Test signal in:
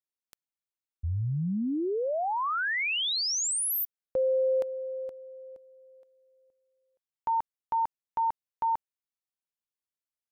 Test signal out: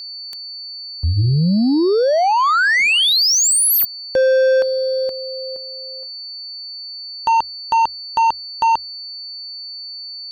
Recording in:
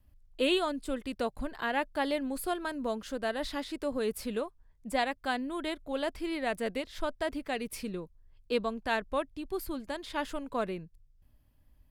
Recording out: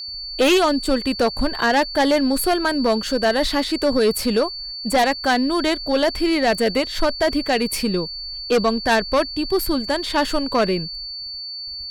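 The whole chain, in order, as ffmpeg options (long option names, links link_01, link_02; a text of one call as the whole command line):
ffmpeg -i in.wav -af "agate=range=-29dB:threshold=-56dB:ratio=3:release=123:detection=rms,aeval=exprs='val(0)+0.00562*sin(2*PI*4500*n/s)':channel_layout=same,acontrast=64,bandreject=frequency=45.9:width_type=h:width=4,bandreject=frequency=91.8:width_type=h:width=4,aeval=exprs='0.316*(cos(1*acos(clip(val(0)/0.316,-1,1)))-cos(1*PI/2))+0.0794*(cos(5*acos(clip(val(0)/0.316,-1,1)))-cos(5*PI/2))':channel_layout=same,volume=2.5dB" out.wav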